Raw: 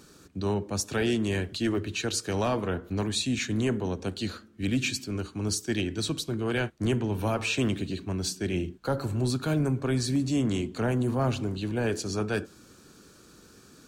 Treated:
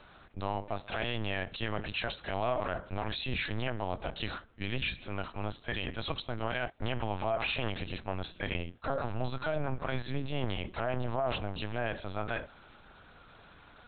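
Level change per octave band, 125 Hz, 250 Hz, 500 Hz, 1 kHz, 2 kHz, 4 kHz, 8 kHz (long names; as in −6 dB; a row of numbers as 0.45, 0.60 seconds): −8.0 dB, −12.0 dB, −5.0 dB, +0.5 dB, −1.5 dB, −4.5 dB, below −40 dB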